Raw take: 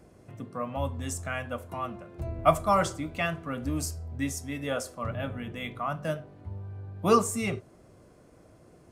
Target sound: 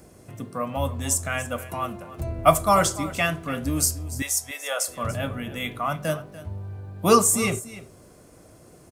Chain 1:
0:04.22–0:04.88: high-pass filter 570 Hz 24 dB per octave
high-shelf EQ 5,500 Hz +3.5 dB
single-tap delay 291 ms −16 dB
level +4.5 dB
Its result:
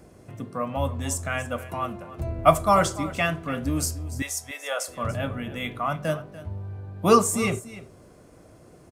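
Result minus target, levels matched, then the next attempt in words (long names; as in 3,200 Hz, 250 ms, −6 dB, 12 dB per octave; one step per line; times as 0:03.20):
8,000 Hz band −5.0 dB
0:04.22–0:04.88: high-pass filter 570 Hz 24 dB per octave
high-shelf EQ 5,500 Hz +13 dB
single-tap delay 291 ms −16 dB
level +4.5 dB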